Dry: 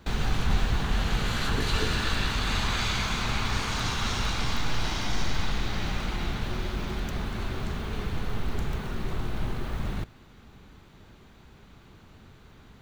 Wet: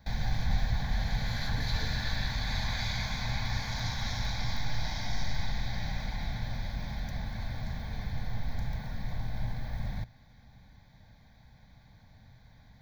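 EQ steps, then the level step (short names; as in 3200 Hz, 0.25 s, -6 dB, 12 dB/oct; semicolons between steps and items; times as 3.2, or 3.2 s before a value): bell 120 Hz +5 dB 0.31 oct; notch 980 Hz, Q 13; fixed phaser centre 1900 Hz, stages 8; -3.5 dB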